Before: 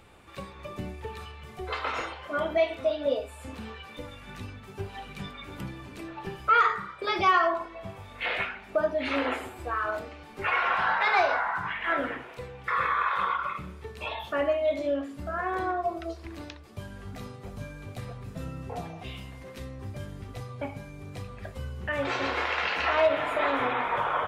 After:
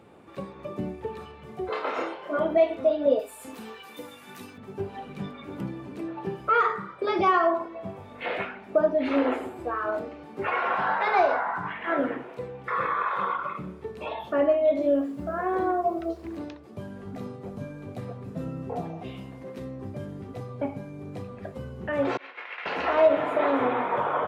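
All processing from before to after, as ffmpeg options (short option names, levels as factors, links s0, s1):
-filter_complex "[0:a]asettb=1/sr,asplit=3[s0][s1][s2];[s0]atrim=end=1.694[s3];[s1]atrim=start=1.69:end=2.39,asetpts=PTS-STARTPTS,afade=t=in:d=0.004:c=qsin,afade=t=out:st=0.696:d=0.004:c=qsin,highpass=220,asplit=2[s4][s5];[s5]adelay=30,volume=0.596[s6];[s4][s6]amix=inputs=2:normalize=0,atrim=end_sample=30870[s7];[s2]atrim=start=2.386[s8];[s3][s7]acrossfade=d=0.004:c1=hsin:c2=qsin[s9];[s9][s8]acrossfade=d=0.004:c1=qsin:c2=hsin,asettb=1/sr,asplit=3[s10][s11][s12];[s10]atrim=end=3.194[s13];[s11]atrim=start=3.19:end=4.58,asetpts=PTS-STARTPTS,afade=t=in:d=0.004:c=qsin,afade=t=out:st=1.386:d=0.004:c=qsin,aemphasis=mode=production:type=riaa,bandreject=f=570:w=6.9,asoftclip=type=hard:threshold=0.0251[s14];[s12]atrim=start=4.576[s15];[s13][s14]acrossfade=d=0.004:c1=hsin:c2=qsin[s16];[s16][s15]acrossfade=d=0.004:c1=qsin:c2=hsin,asettb=1/sr,asplit=3[s17][s18][s19];[s17]atrim=end=14.814[s20];[s18]atrim=start=14.81:end=16.37,asetpts=PTS-STARTPTS,afade=t=in:d=0.004:c=qsin,afade=t=out:st=1.556:d=0.004:c=qsin,equalizer=f=63:t=o:w=0.36:g=7,acrusher=bits=8:mix=0:aa=0.5[s21];[s19]atrim=start=16.366[s22];[s20][s21]acrossfade=d=0.004:c1=hsin:c2=qsin[s23];[s23][s22]acrossfade=d=0.004:c1=qsin:c2=hsin,asettb=1/sr,asplit=3[s24][s25][s26];[s24]atrim=end=22.174[s27];[s25]atrim=start=22.17:end=22.66,asetpts=PTS-STARTPTS,afade=t=in:d=0.004:c=qsin,afade=t=out:st=0.486:d=0.004:c=qsin,bandpass=f=2300:t=q:w=2,agate=range=0.0224:threshold=0.0251:ratio=3:release=100:detection=peak[s28];[s26]atrim=start=22.656[s29];[s27][s28]acrossfade=d=0.004:c1=hsin:c2=qsin[s30];[s30][s29]acrossfade=d=0.004:c1=qsin:c2=hsin,highpass=190,tiltshelf=f=970:g=8.5,volume=1.12"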